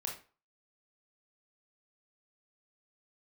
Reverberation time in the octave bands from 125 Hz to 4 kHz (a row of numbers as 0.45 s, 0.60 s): 0.35 s, 0.35 s, 0.35 s, 0.40 s, 0.30 s, 0.30 s